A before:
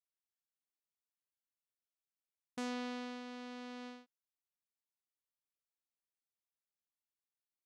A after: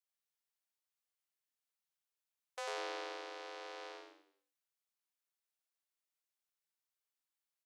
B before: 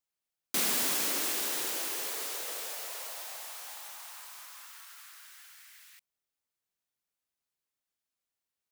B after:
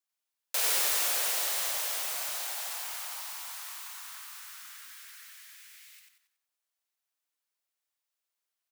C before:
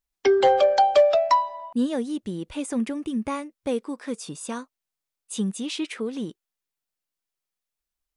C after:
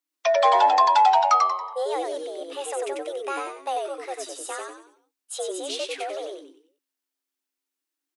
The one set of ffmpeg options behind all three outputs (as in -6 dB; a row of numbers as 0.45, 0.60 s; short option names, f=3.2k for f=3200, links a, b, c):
-filter_complex "[0:a]lowshelf=f=220:g=-11.5,asplit=6[a][b][c][d][e][f];[b]adelay=93,afreqshift=-94,volume=-3dB[g];[c]adelay=186,afreqshift=-188,volume=-11.2dB[h];[d]adelay=279,afreqshift=-282,volume=-19.4dB[i];[e]adelay=372,afreqshift=-376,volume=-27.5dB[j];[f]adelay=465,afreqshift=-470,volume=-35.7dB[k];[a][g][h][i][j][k]amix=inputs=6:normalize=0,afreqshift=270"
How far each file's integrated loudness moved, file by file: -0.5, +2.0, +0.5 LU